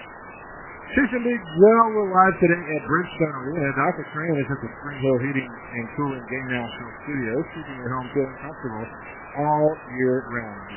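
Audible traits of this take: phasing stages 4, 2.6 Hz, lowest notch 500–1600 Hz; chopped level 1.4 Hz, depth 60%, duty 55%; a quantiser's noise floor 6-bit, dither triangular; MP3

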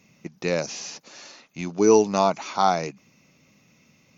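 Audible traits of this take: noise floor -61 dBFS; spectral tilt -4.5 dB/oct

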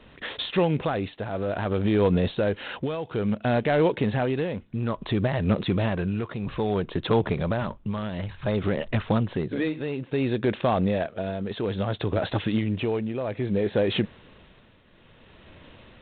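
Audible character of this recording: tremolo triangle 0.59 Hz, depth 70%; IMA ADPCM

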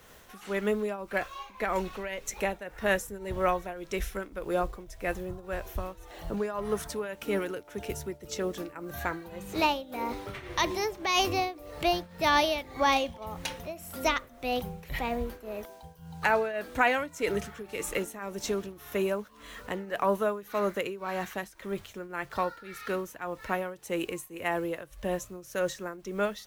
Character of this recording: a quantiser's noise floor 10-bit, dither none; tremolo triangle 1.8 Hz, depth 85%

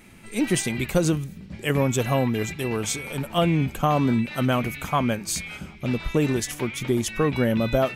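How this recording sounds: noise floor -43 dBFS; spectral tilt -5.5 dB/oct

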